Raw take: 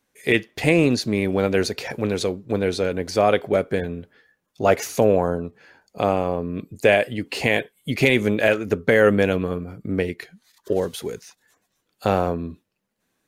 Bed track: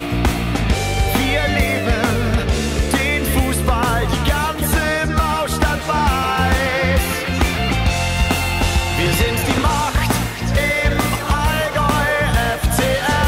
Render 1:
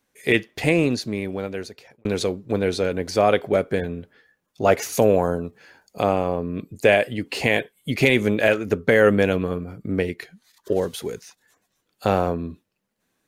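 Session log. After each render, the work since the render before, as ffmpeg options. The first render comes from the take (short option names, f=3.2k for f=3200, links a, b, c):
-filter_complex "[0:a]asettb=1/sr,asplit=3[a][b][c];[a]atrim=end=4.924[d];[b]atrim=start=4.92:end=6.03,asetpts=PTS-STARTPTS,afade=t=in:d=0.004:c=qsin,afade=t=out:st=1.106:d=0.004:c=qsin,highshelf=f=4.8k:g=7.5[e];[c]atrim=start=6.026[f];[d][e]acrossfade=d=0.004:c1=hsin:c2=qsin[g];[g][f]acrossfade=d=0.004:c1=qsin:c2=hsin,asplit=2[h][i];[h]atrim=end=2.05,asetpts=PTS-STARTPTS,afade=t=out:st=0.45:d=1.6[j];[i]atrim=start=2.05,asetpts=PTS-STARTPTS,afade=t=in:d=0.004:c=hsin[k];[j][k]concat=n=2:v=0:a=1"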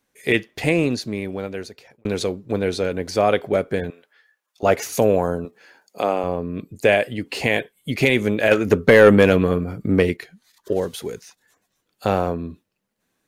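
-filter_complex "[0:a]asettb=1/sr,asplit=3[a][b][c];[a]atrim=end=3.904[d];[b]atrim=start=3.9:end=4.63,asetpts=PTS-STARTPTS,afade=t=in:d=0.004:c=qsin,afade=t=out:st=0.726:d=0.004:c=qsin,highpass=870[e];[c]atrim=start=4.626[f];[d][e]acrossfade=d=0.004:c1=hsin:c2=qsin[g];[g][f]acrossfade=d=0.004:c1=qsin:c2=hsin,asettb=1/sr,asplit=3[h][i][j];[h]atrim=end=5.454[k];[i]atrim=start=5.45:end=6.24,asetpts=PTS-STARTPTS,afade=t=in:d=0.004:c=qsin,afade=t=out:st=0.786:d=0.004:c=qsin,highpass=260[l];[j]atrim=start=6.236[m];[k][l]acrossfade=d=0.004:c1=hsin:c2=qsin[n];[n][m]acrossfade=d=0.004:c1=qsin:c2=hsin,asettb=1/sr,asplit=3[o][p][q];[o]atrim=end=8.514[r];[p]atrim=start=8.51:end=10.17,asetpts=PTS-STARTPTS,afade=t=in:d=0.004:c=qsin,afade=t=out:st=1.656:d=0.004:c=qsin,acontrast=73[s];[q]atrim=start=10.166[t];[r][s]acrossfade=d=0.004:c1=hsin:c2=qsin[u];[u][t]acrossfade=d=0.004:c1=qsin:c2=hsin"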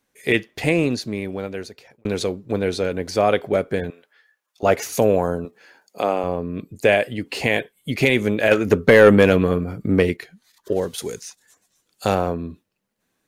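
-filter_complex "[0:a]asettb=1/sr,asplit=3[a][b][c];[a]atrim=end=10.984[d];[b]atrim=start=10.98:end=12.15,asetpts=PTS-STARTPTS,afade=t=in:d=0.004:c=qsin,afade=t=out:st=1.166:d=0.004:c=qsin,equalizer=f=7.7k:t=o:w=1.7:g=10.5[e];[c]atrim=start=12.146[f];[d][e]acrossfade=d=0.004:c1=hsin:c2=qsin[g];[g][f]acrossfade=d=0.004:c1=qsin:c2=hsin"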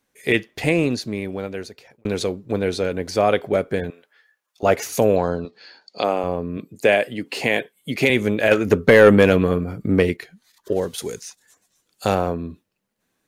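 -filter_complex "[0:a]asettb=1/sr,asplit=3[a][b][c];[a]atrim=end=5.164[d];[b]atrim=start=5.16:end=6.04,asetpts=PTS-STARTPTS,afade=t=in:d=0.004:c=qsin,afade=t=out:st=0.876:d=0.004:c=qsin,lowpass=f=4.4k:t=q:w=6.6[e];[c]atrim=start=6.036[f];[d][e]acrossfade=d=0.004:c1=hsin:c2=qsin[g];[g][f]acrossfade=d=0.004:c1=qsin:c2=hsin,asettb=1/sr,asplit=3[h][i][j];[h]atrim=end=6.574[k];[i]atrim=start=6.57:end=8.1,asetpts=PTS-STARTPTS,afade=t=in:d=0.004:c=qsin,afade=t=out:st=1.526:d=0.004:c=qsin,highpass=150[l];[j]atrim=start=8.096[m];[k][l]acrossfade=d=0.004:c1=hsin:c2=qsin[n];[n][m]acrossfade=d=0.004:c1=qsin:c2=hsin"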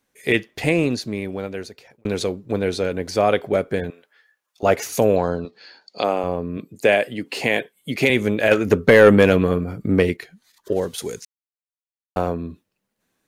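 -filter_complex "[0:a]asplit=3[a][b][c];[a]atrim=end=11.25,asetpts=PTS-STARTPTS,afade=t=out:st=11.246:d=0.004:c=hsin[d];[b]atrim=start=11.25:end=12.16,asetpts=PTS-STARTPTS,volume=0[e];[c]atrim=start=12.16,asetpts=PTS-STARTPTS,afade=t=in:d=0.004:c=hsin[f];[d][e][f]concat=n=3:v=0:a=1"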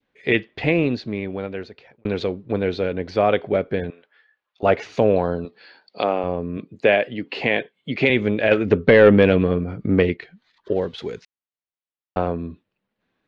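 -af "lowpass=f=3.8k:w=0.5412,lowpass=f=3.8k:w=1.3066,adynamicequalizer=threshold=0.0224:dfrequency=1200:dqfactor=1.1:tfrequency=1200:tqfactor=1.1:attack=5:release=100:ratio=0.375:range=2.5:mode=cutabove:tftype=bell"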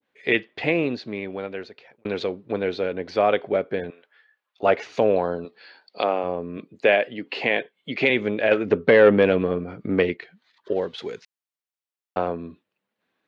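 -af "highpass=f=360:p=1,adynamicequalizer=threshold=0.02:dfrequency=1600:dqfactor=0.7:tfrequency=1600:tqfactor=0.7:attack=5:release=100:ratio=0.375:range=2.5:mode=cutabove:tftype=highshelf"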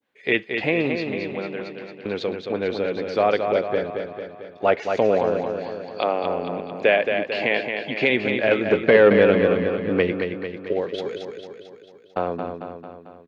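-af "aecho=1:1:223|446|669|892|1115|1338|1561:0.501|0.286|0.163|0.0928|0.0529|0.0302|0.0172"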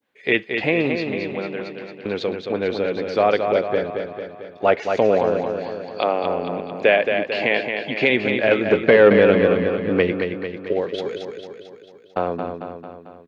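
-af "volume=2dB,alimiter=limit=-3dB:level=0:latency=1"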